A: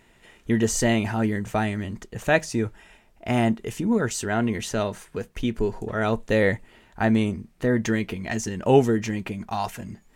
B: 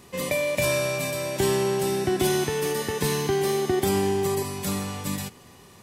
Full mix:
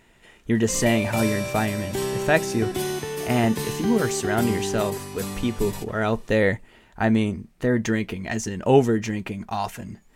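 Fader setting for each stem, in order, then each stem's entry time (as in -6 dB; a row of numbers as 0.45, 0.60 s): +0.5, -4.0 dB; 0.00, 0.55 s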